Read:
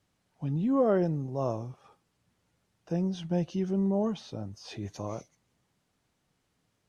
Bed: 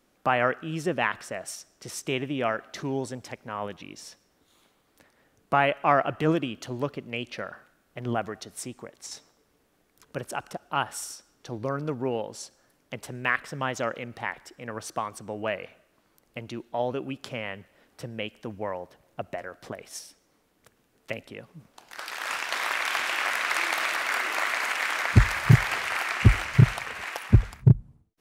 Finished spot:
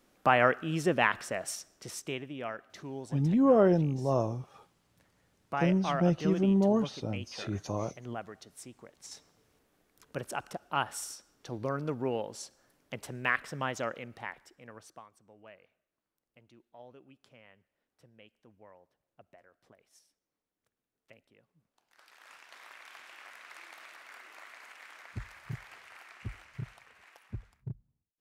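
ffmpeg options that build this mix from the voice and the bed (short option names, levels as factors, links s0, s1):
-filter_complex "[0:a]adelay=2700,volume=1.33[s0];[1:a]volume=2.37,afade=t=out:st=1.55:d=0.69:silence=0.281838,afade=t=in:st=8.79:d=0.76:silence=0.421697,afade=t=out:st=13.5:d=1.59:silence=0.1[s1];[s0][s1]amix=inputs=2:normalize=0"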